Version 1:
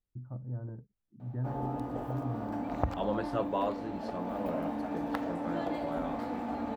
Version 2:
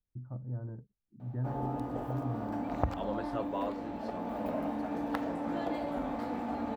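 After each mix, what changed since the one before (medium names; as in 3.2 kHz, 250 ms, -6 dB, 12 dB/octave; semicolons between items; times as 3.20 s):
second voice -4.5 dB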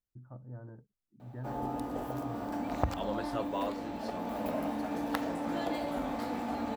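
first voice: add bass shelf 310 Hz -9 dB; master: add treble shelf 3.2 kHz +12 dB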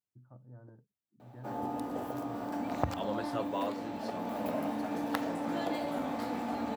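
first voice -6.5 dB; master: add high-pass 81 Hz 24 dB/octave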